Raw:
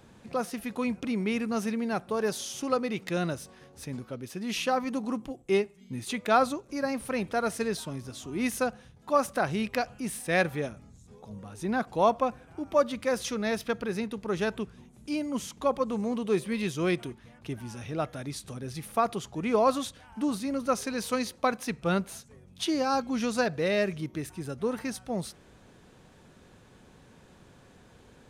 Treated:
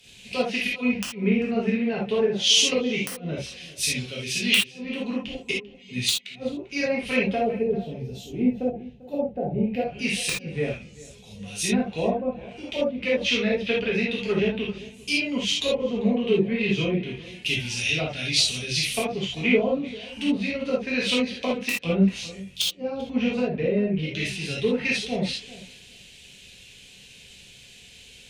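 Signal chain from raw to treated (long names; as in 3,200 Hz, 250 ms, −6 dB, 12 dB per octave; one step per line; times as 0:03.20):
gain on a spectral selection 0:07.19–0:07.71, 1,300–8,900 Hz −7 dB
treble cut that deepens with the level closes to 420 Hz, closed at −23 dBFS
high shelf with overshoot 1,800 Hz +13.5 dB, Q 3
gain on a spectral selection 0:07.43–0:09.79, 900–12,000 Hz −18 dB
gate with flip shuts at −14 dBFS, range −37 dB
wrap-around overflow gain 14 dB
feedback echo with a low-pass in the loop 394 ms, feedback 23%, low-pass 2,400 Hz, level −14.5 dB
reverb whose tail is shaped and stops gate 100 ms flat, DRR −5 dB
multiband upward and downward expander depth 40%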